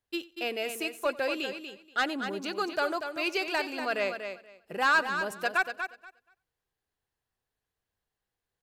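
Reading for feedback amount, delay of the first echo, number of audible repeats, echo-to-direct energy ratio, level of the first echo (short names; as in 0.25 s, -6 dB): no steady repeat, 91 ms, 4, -7.5 dB, -21.0 dB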